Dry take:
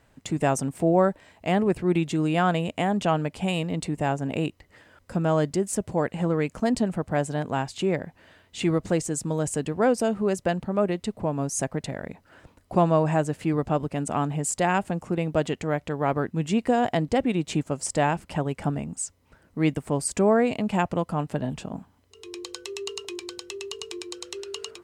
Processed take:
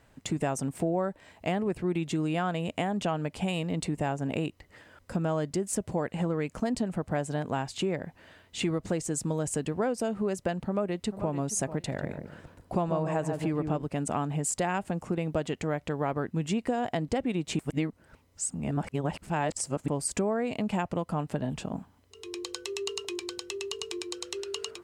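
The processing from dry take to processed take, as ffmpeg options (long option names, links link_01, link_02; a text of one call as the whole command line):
ffmpeg -i in.wav -filter_complex "[0:a]asplit=2[link_01][link_02];[link_02]afade=type=in:start_time=10.64:duration=0.01,afade=type=out:start_time=11.32:duration=0.01,aecho=0:1:440|880:0.188365|0.037673[link_03];[link_01][link_03]amix=inputs=2:normalize=0,asplit=3[link_04][link_05][link_06];[link_04]afade=type=out:start_time=11.93:duration=0.02[link_07];[link_05]asplit=2[link_08][link_09];[link_09]adelay=144,lowpass=frequency=840:poles=1,volume=-5dB,asplit=2[link_10][link_11];[link_11]adelay=144,lowpass=frequency=840:poles=1,volume=0.36,asplit=2[link_12][link_13];[link_13]adelay=144,lowpass=frequency=840:poles=1,volume=0.36,asplit=2[link_14][link_15];[link_15]adelay=144,lowpass=frequency=840:poles=1,volume=0.36[link_16];[link_08][link_10][link_12][link_14][link_16]amix=inputs=5:normalize=0,afade=type=in:start_time=11.93:duration=0.02,afade=type=out:start_time=13.81:duration=0.02[link_17];[link_06]afade=type=in:start_time=13.81:duration=0.02[link_18];[link_07][link_17][link_18]amix=inputs=3:normalize=0,asplit=3[link_19][link_20][link_21];[link_19]atrim=end=17.592[link_22];[link_20]atrim=start=17.588:end=19.882,asetpts=PTS-STARTPTS,areverse[link_23];[link_21]atrim=start=19.878[link_24];[link_22][link_23]acrossfade=duration=0.004:curve1=hsin:curve2=hsin[link_25];[link_25][link_24]acrossfade=duration=0.004:curve1=hsin:curve2=hsin,acompressor=threshold=-26dB:ratio=4" out.wav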